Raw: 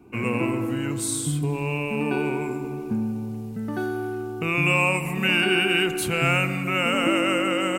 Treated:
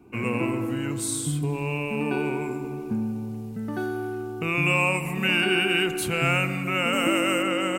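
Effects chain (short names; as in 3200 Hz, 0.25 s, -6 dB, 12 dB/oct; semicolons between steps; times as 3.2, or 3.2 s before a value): 6.93–7.43 high shelf 7900 Hz +11 dB; gain -1.5 dB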